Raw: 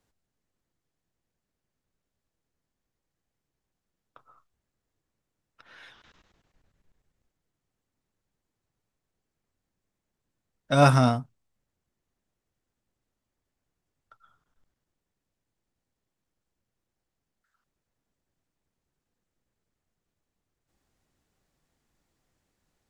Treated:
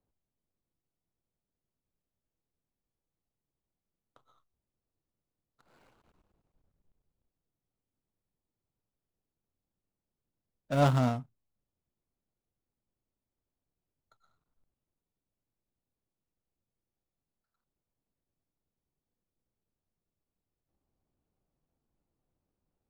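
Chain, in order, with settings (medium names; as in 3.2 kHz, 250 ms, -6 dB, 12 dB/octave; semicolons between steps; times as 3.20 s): median filter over 25 samples; trim -5.5 dB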